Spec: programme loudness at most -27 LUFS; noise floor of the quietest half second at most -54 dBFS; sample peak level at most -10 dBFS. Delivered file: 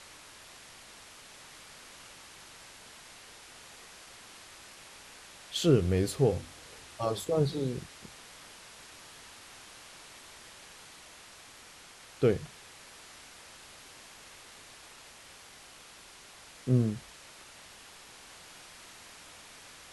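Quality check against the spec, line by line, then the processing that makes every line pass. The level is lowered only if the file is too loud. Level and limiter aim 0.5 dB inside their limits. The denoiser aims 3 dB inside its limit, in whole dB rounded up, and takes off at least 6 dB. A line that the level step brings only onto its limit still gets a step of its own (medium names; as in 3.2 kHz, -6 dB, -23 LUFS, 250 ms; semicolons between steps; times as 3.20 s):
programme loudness -30.0 LUFS: pass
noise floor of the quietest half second -53 dBFS: fail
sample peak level -11.5 dBFS: pass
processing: noise reduction 6 dB, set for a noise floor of -53 dBFS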